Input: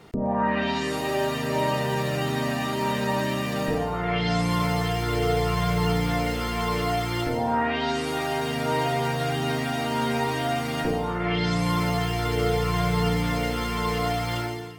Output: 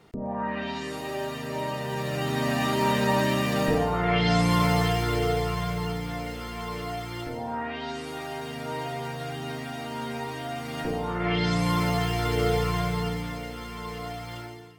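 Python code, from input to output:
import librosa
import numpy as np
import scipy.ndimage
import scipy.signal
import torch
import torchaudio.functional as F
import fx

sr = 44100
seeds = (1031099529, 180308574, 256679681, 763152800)

y = fx.gain(x, sr, db=fx.line((1.78, -6.5), (2.65, 2.0), (4.83, 2.0), (6.0, -8.0), (10.51, -8.0), (11.26, -0.5), (12.59, -0.5), (13.45, -10.0)))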